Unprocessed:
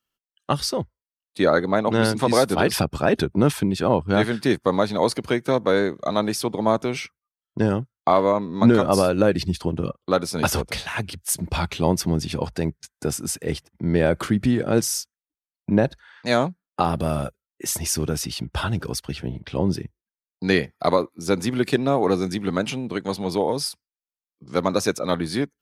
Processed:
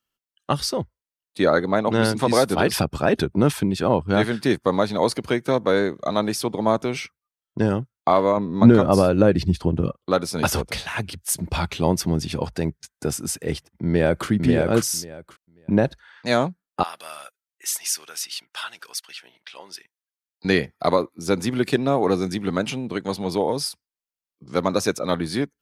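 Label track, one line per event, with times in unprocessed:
8.370000	9.890000	tilt EQ -1.5 dB/octave
13.850000	14.280000	echo throw 540 ms, feedback 15%, level -3 dB
16.830000	20.450000	high-pass 1.5 kHz

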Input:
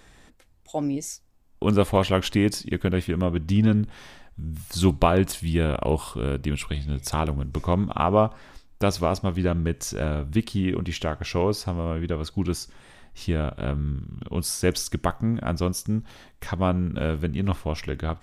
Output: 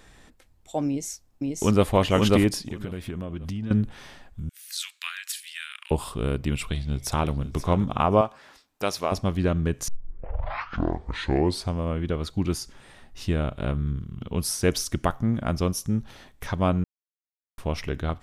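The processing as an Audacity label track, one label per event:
0.870000	1.900000	echo throw 540 ms, feedback 20%, level -1 dB
2.610000	3.710000	compression, threshold -28 dBFS
4.490000	5.910000	steep high-pass 1.6 kHz
6.660000	7.520000	echo throw 530 ms, feedback 10%, level -13 dB
8.210000	9.120000	high-pass 600 Hz 6 dB/octave
9.880000	9.880000	tape start 1.89 s
16.840000	17.580000	mute

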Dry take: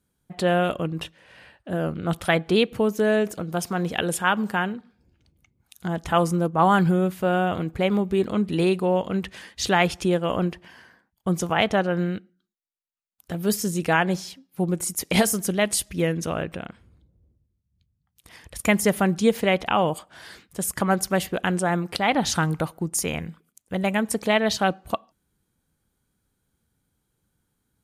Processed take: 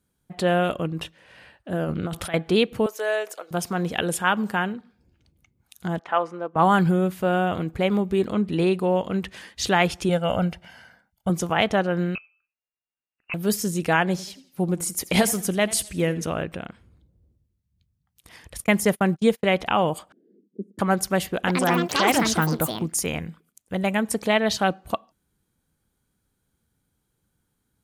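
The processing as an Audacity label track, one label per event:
1.840000	2.340000	compressor with a negative ratio -28 dBFS
2.860000	3.510000	high-pass 520 Hz 24 dB/octave
5.990000	6.560000	band-pass 550–2200 Hz
8.340000	8.790000	treble shelf 5 kHz -6.5 dB
10.090000	11.300000	comb 1.4 ms
12.150000	13.340000	frequency inversion carrier 2.8 kHz
14.100000	16.300000	modulated delay 85 ms, feedback 40%, depth 91 cents, level -18 dB
18.640000	19.470000	gate -28 dBFS, range -39 dB
20.120000	20.790000	elliptic band-pass 200–430 Hz, stop band 50 dB
21.330000	23.730000	ever faster or slower copies 142 ms, each echo +6 st, echoes 2

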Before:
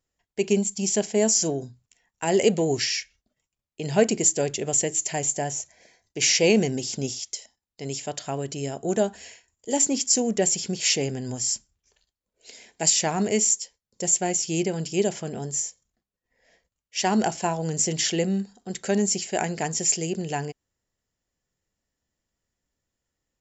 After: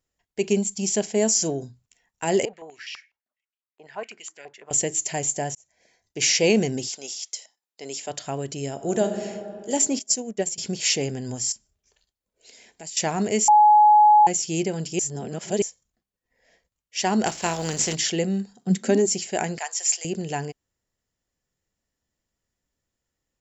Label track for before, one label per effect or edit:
2.450000	4.710000	step-sequenced band-pass 12 Hz 880–2900 Hz
5.550000	6.220000	fade in
6.880000	8.090000	high-pass 780 Hz -> 300 Hz
8.720000	9.220000	reverb throw, RT60 2.6 s, DRR 5.5 dB
9.990000	10.580000	upward expansion 2.5:1, over -31 dBFS
11.520000	12.970000	compression 2:1, threshold -48 dBFS
13.480000	14.270000	bleep 843 Hz -10.5 dBFS
14.990000	15.620000	reverse
17.250000	17.940000	spectral contrast reduction exponent 0.61
18.540000	19.050000	resonant high-pass 120 Hz -> 340 Hz, resonance Q 12
19.580000	20.050000	high-pass 770 Hz 24 dB/octave

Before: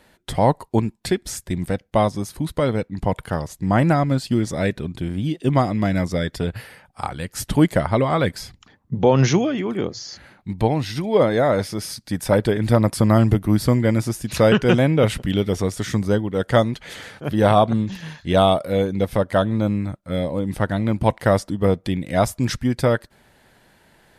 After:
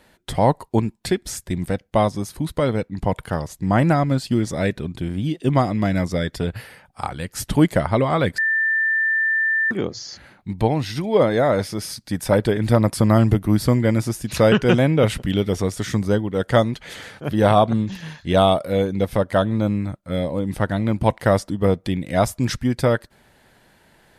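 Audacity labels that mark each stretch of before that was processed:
8.380000	9.710000	bleep 1.78 kHz -16.5 dBFS

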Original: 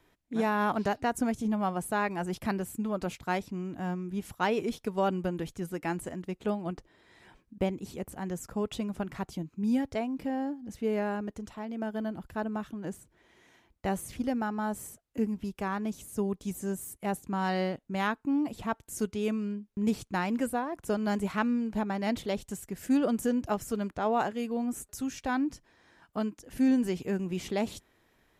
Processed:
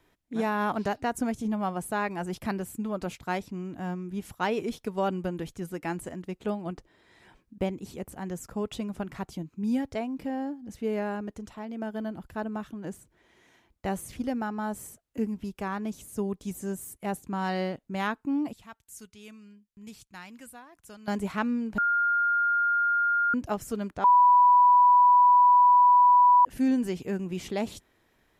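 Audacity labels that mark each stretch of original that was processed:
18.530000	21.080000	amplifier tone stack bass-middle-treble 5-5-5
21.780000	23.340000	bleep 1.41 kHz -21.5 dBFS
24.040000	26.450000	bleep 985 Hz -14.5 dBFS

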